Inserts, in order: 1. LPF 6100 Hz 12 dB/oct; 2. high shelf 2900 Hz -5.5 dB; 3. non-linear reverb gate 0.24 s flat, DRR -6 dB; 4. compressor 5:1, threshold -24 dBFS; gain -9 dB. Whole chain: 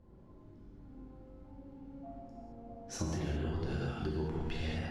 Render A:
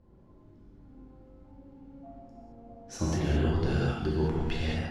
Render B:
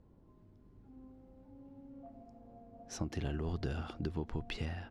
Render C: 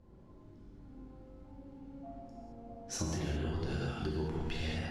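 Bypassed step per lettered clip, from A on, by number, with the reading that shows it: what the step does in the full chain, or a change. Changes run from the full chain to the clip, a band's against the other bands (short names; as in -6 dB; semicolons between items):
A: 4, mean gain reduction 3.0 dB; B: 3, crest factor change +2.5 dB; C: 2, 8 kHz band +4.0 dB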